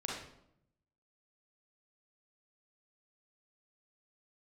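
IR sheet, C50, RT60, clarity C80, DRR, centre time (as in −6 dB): 0.5 dB, 0.75 s, 5.5 dB, −3.5 dB, 54 ms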